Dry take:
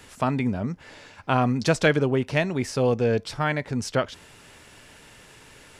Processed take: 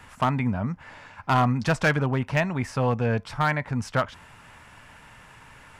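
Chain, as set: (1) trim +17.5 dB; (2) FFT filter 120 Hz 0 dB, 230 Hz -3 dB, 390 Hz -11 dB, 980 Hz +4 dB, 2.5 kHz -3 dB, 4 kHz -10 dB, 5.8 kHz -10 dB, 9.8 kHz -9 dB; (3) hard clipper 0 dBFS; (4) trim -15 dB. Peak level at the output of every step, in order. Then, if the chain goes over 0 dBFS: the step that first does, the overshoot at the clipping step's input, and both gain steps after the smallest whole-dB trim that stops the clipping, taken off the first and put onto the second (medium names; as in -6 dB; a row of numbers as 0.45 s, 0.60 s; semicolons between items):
+10.5 dBFS, +9.0 dBFS, 0.0 dBFS, -15.0 dBFS; step 1, 9.0 dB; step 1 +8.5 dB, step 4 -6 dB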